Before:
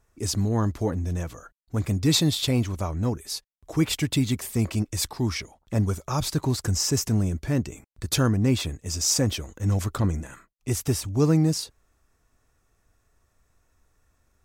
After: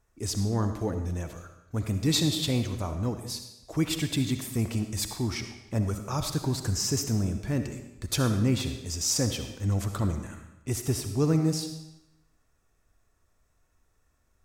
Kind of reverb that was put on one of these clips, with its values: digital reverb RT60 0.91 s, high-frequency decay 0.95×, pre-delay 25 ms, DRR 7 dB; gain -4 dB

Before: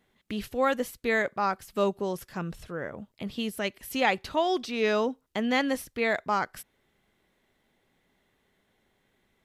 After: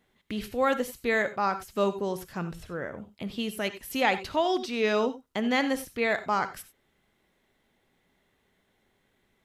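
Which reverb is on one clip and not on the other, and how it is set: non-linear reverb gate 0.11 s rising, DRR 11.5 dB

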